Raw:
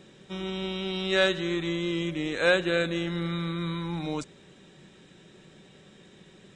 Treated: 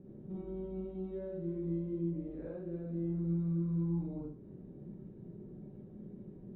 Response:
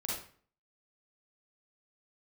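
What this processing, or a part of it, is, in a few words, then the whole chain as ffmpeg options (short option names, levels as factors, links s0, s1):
television next door: -filter_complex "[0:a]acompressor=threshold=0.0112:ratio=5,lowpass=310[s0];[1:a]atrim=start_sample=2205[s1];[s0][s1]afir=irnorm=-1:irlink=0,volume=1.5"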